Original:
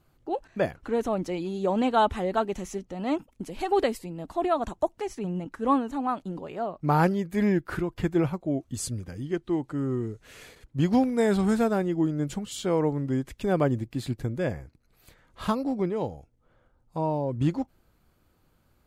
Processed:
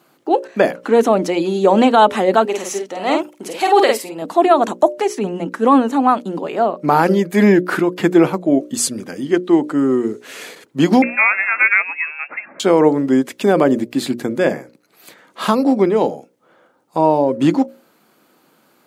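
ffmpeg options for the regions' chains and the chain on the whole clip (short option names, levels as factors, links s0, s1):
-filter_complex "[0:a]asettb=1/sr,asplit=3[s0][s1][s2];[s0]atrim=end=2.454[s3];[s1]atrim=start=2.45:end=4.22,asetpts=PTS-STARTPTS,afade=t=in:d=0.004:c=qsin,afade=t=out:st=1.766:d=0.004:c=qsin,equalizer=f=210:t=o:w=1.3:g=-13,asplit=2[s4][s5];[s5]adelay=49,volume=0.631[s6];[s4][s6]amix=inputs=2:normalize=0,atrim=end_sample=78057[s7];[s2]atrim=start=4.216[s8];[s3][s7]acrossfade=d=0.004:c1=hsin:c2=qsin[s9];[s9][s8]acrossfade=d=0.004:c1=qsin:c2=hsin,asettb=1/sr,asplit=3[s10][s11][s12];[s10]atrim=end=11.024[s13];[s11]atrim=start=11.02:end=12.6,asetpts=PTS-STARTPTS,afade=t=in:d=0.004:c=qsin,afade=t=out:st=1.576:d=0.004:c=qsin,highpass=f=860:t=q:w=1.7,lowpass=f=2500:t=q:w=0.5098,lowpass=f=2500:t=q:w=0.6013,lowpass=f=2500:t=q:w=0.9,lowpass=f=2500:t=q:w=2.563,afreqshift=-2900[s14];[s12]atrim=start=12.596[s15];[s13][s14]acrossfade=d=0.004:c1=hsin:c2=qsin[s16];[s16][s15]acrossfade=d=0.004:c1=qsin:c2=hsin,highpass=f=210:w=0.5412,highpass=f=210:w=1.3066,bandreject=f=60:t=h:w=6,bandreject=f=120:t=h:w=6,bandreject=f=180:t=h:w=6,bandreject=f=240:t=h:w=6,bandreject=f=300:t=h:w=6,bandreject=f=360:t=h:w=6,bandreject=f=420:t=h:w=6,bandreject=f=480:t=h:w=6,bandreject=f=540:t=h:w=6,bandreject=f=600:t=h:w=6,alimiter=level_in=6.31:limit=0.891:release=50:level=0:latency=1,volume=0.891"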